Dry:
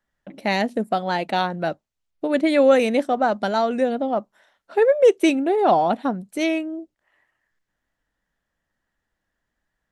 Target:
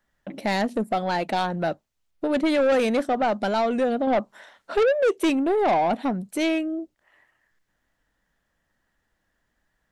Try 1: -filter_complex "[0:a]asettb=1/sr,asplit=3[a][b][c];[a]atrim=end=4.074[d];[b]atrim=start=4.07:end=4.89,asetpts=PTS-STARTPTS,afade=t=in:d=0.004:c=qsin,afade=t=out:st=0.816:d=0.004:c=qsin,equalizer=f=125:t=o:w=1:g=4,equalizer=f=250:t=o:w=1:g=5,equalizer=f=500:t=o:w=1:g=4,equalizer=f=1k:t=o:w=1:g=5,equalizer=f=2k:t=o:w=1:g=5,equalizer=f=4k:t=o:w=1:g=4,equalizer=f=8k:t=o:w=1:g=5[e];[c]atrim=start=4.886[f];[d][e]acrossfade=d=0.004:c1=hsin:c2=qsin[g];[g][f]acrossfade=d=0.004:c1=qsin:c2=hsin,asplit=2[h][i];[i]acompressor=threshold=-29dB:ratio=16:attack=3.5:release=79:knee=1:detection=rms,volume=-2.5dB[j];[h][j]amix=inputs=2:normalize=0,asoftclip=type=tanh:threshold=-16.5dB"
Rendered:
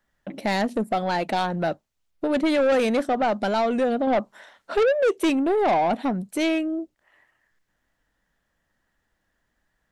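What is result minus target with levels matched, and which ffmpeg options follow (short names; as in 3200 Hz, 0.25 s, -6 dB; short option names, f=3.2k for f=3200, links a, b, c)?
compressor: peak gain reduction -5.5 dB
-filter_complex "[0:a]asettb=1/sr,asplit=3[a][b][c];[a]atrim=end=4.074[d];[b]atrim=start=4.07:end=4.89,asetpts=PTS-STARTPTS,afade=t=in:d=0.004:c=qsin,afade=t=out:st=0.816:d=0.004:c=qsin,equalizer=f=125:t=o:w=1:g=4,equalizer=f=250:t=o:w=1:g=5,equalizer=f=500:t=o:w=1:g=4,equalizer=f=1k:t=o:w=1:g=5,equalizer=f=2k:t=o:w=1:g=5,equalizer=f=4k:t=o:w=1:g=4,equalizer=f=8k:t=o:w=1:g=5[e];[c]atrim=start=4.886[f];[d][e]acrossfade=d=0.004:c1=hsin:c2=qsin[g];[g][f]acrossfade=d=0.004:c1=qsin:c2=hsin,asplit=2[h][i];[i]acompressor=threshold=-35dB:ratio=16:attack=3.5:release=79:knee=1:detection=rms,volume=-2.5dB[j];[h][j]amix=inputs=2:normalize=0,asoftclip=type=tanh:threshold=-16.5dB"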